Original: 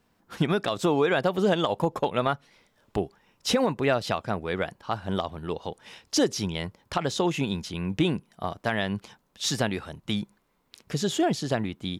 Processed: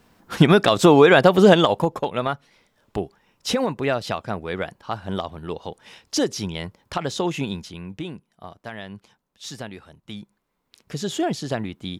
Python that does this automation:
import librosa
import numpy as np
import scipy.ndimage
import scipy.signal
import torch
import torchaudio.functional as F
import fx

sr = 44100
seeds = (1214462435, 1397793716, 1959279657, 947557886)

y = fx.gain(x, sr, db=fx.line((1.52, 10.5), (2.0, 1.0), (7.48, 1.0), (8.02, -8.5), (10.06, -8.5), (11.19, 0.5)))